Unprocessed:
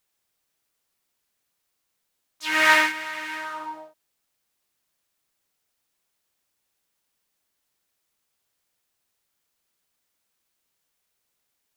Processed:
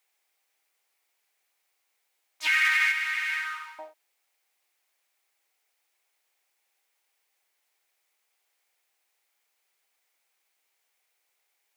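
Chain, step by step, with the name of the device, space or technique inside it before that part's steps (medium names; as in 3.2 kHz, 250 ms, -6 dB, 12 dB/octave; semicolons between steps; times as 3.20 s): laptop speaker (high-pass 370 Hz 24 dB/octave; peaking EQ 790 Hz +7 dB 0.23 oct; peaking EQ 2.2 kHz +8 dB 0.53 oct; peak limiter -13.5 dBFS, peak gain reduction 13 dB); 2.47–3.79 s: steep high-pass 1.2 kHz 48 dB/octave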